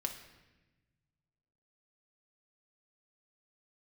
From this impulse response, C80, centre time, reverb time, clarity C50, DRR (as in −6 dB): 11.0 dB, 19 ms, 1.1 s, 8.5 dB, 3.5 dB